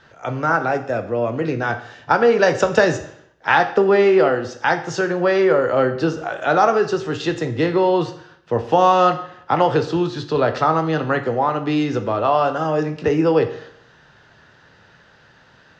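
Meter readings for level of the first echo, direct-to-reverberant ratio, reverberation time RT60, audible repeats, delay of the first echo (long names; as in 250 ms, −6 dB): no echo audible, 7.0 dB, 0.65 s, no echo audible, no echo audible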